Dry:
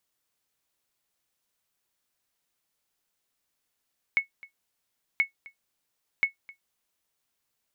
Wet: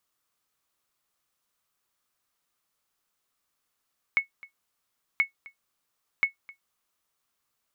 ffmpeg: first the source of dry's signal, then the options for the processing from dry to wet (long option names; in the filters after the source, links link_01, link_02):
-f lavfi -i "aevalsrc='0.2*(sin(2*PI*2200*mod(t,1.03))*exp(-6.91*mod(t,1.03)/0.12)+0.075*sin(2*PI*2200*max(mod(t,1.03)-0.26,0))*exp(-6.91*max(mod(t,1.03)-0.26,0)/0.12))':duration=3.09:sample_rate=44100"
-af "equalizer=frequency=1200:width_type=o:width=0.41:gain=8"